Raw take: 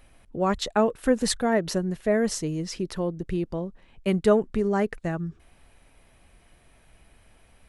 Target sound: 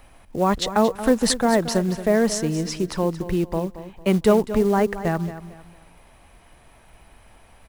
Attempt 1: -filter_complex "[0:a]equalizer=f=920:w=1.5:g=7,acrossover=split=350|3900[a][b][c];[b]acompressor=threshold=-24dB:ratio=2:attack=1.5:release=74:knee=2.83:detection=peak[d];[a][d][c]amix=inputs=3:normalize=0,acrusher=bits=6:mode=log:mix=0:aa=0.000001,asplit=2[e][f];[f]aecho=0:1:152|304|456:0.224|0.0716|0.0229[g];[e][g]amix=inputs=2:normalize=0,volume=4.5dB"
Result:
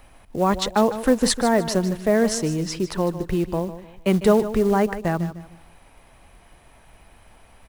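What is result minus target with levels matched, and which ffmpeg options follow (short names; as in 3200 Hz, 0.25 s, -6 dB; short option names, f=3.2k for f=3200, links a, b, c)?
echo 74 ms early
-filter_complex "[0:a]equalizer=f=920:w=1.5:g=7,acrossover=split=350|3900[a][b][c];[b]acompressor=threshold=-24dB:ratio=2:attack=1.5:release=74:knee=2.83:detection=peak[d];[a][d][c]amix=inputs=3:normalize=0,acrusher=bits=6:mode=log:mix=0:aa=0.000001,asplit=2[e][f];[f]aecho=0:1:226|452|678:0.224|0.0716|0.0229[g];[e][g]amix=inputs=2:normalize=0,volume=4.5dB"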